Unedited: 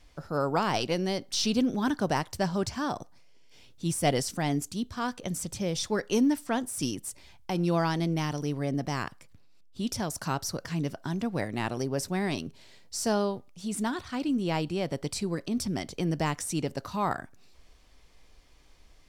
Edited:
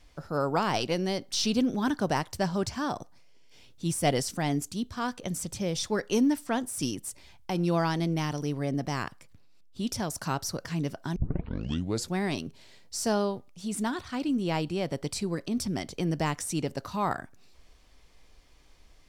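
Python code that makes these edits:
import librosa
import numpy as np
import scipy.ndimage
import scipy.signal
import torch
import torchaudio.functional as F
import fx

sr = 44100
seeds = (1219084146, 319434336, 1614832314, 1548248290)

y = fx.edit(x, sr, fx.tape_start(start_s=11.16, length_s=0.98), tone=tone)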